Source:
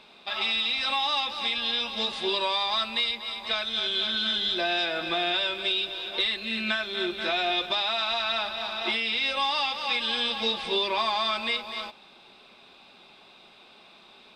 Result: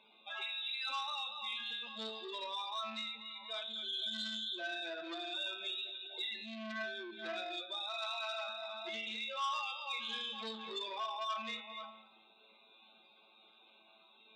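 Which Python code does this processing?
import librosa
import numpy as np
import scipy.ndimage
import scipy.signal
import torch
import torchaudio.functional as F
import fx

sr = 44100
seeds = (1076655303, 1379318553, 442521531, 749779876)

y = fx.spec_gate(x, sr, threshold_db=-10, keep='strong')
y = fx.low_shelf(y, sr, hz=180.0, db=-8.5)
y = fx.comb_fb(y, sr, f0_hz=110.0, decay_s=0.74, harmonics='all', damping=0.0, mix_pct=90)
y = fx.echo_feedback(y, sr, ms=225, feedback_pct=28, wet_db=-17.0)
y = fx.transformer_sat(y, sr, knee_hz=2300.0)
y = y * 10.0 ** (3.0 / 20.0)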